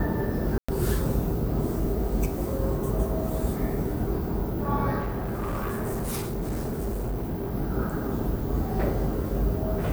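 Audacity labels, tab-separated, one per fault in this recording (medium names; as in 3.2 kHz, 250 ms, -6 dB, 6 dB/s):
0.580000	0.690000	dropout 105 ms
4.990000	7.550000	clipped -26 dBFS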